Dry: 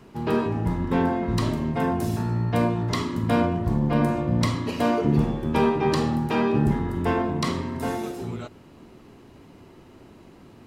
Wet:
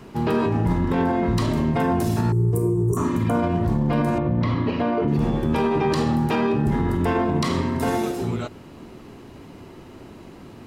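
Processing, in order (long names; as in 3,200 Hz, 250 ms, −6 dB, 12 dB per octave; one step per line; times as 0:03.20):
0:02.91–0:03.40: healed spectral selection 1,600–5,700 Hz both
0:02.32–0:02.97: drawn EQ curve 160 Hz 0 dB, 260 Hz −19 dB, 390 Hz +11 dB, 600 Hz −22 dB, 1,100 Hz −14 dB, 1,500 Hz −27 dB, 3,900 Hz −27 dB, 8,400 Hz +7 dB
brickwall limiter −19.5 dBFS, peak gain reduction 10 dB
0:04.18–0:05.08: high-frequency loss of the air 310 metres
level +6.5 dB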